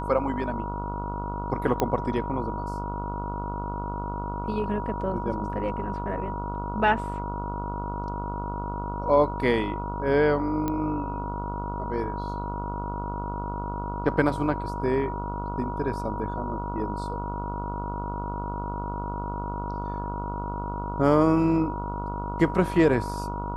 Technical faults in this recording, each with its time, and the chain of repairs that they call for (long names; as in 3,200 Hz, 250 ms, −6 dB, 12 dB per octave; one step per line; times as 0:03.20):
mains buzz 50 Hz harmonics 29 −33 dBFS
whistle 960 Hz −33 dBFS
0:01.80: click −10 dBFS
0:10.68: click −15 dBFS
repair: click removal
hum removal 50 Hz, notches 29
notch filter 960 Hz, Q 30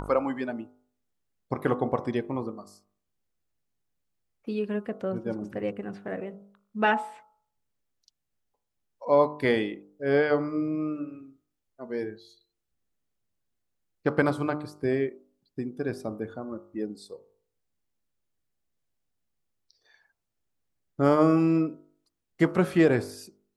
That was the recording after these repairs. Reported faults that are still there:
0:10.68: click